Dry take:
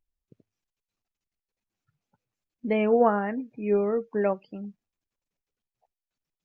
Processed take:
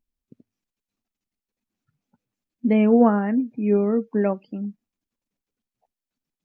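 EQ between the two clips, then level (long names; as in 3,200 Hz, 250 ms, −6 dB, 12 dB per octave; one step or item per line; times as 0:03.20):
parametric band 240 Hz +12 dB 0.76 octaves
0.0 dB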